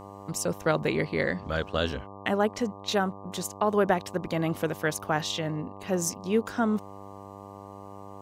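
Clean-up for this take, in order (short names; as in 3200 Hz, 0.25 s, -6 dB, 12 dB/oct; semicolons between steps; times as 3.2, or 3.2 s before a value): de-hum 99.2 Hz, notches 12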